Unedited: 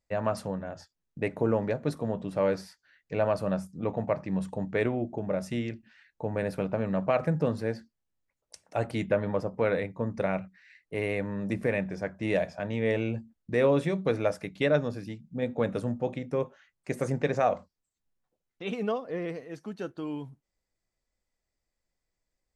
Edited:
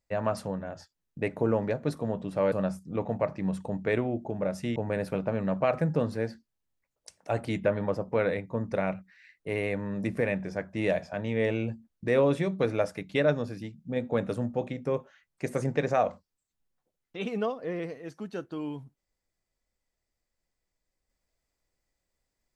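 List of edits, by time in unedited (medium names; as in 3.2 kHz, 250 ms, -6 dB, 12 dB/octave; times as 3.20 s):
2.52–3.40 s: delete
5.64–6.22 s: delete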